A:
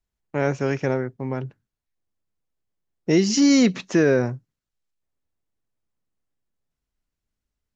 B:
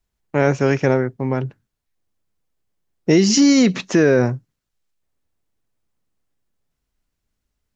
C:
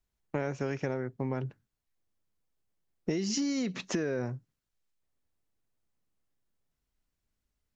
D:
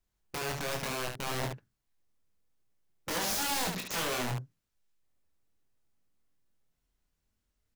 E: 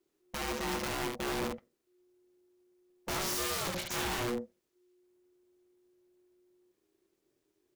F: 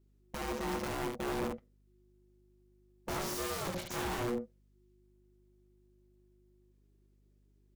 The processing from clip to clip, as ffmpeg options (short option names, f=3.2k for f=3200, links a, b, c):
-af "alimiter=level_in=11dB:limit=-1dB:release=50:level=0:latency=1,volume=-4.5dB"
-af "acompressor=threshold=-22dB:ratio=8,volume=-6.5dB"
-filter_complex "[0:a]aeval=exprs='(mod(29.9*val(0)+1,2)-1)/29.9':c=same,asplit=2[a][b];[b]aecho=0:1:24|72:0.596|0.562[c];[a][c]amix=inputs=2:normalize=0"
-af "aeval=exprs='(tanh(56.2*val(0)+0.45)-tanh(0.45))/56.2':c=same,aeval=exprs='val(0)*sin(2*PI*360*n/s)':c=same,volume=6.5dB"
-filter_complex "[0:a]asplit=2[a][b];[b]adynamicsmooth=sensitivity=4.5:basefreq=550,volume=-0.5dB[c];[a][c]amix=inputs=2:normalize=0,aeval=exprs='val(0)+0.000891*(sin(2*PI*50*n/s)+sin(2*PI*2*50*n/s)/2+sin(2*PI*3*50*n/s)/3+sin(2*PI*4*50*n/s)/4+sin(2*PI*5*50*n/s)/5)':c=same,volume=-5.5dB"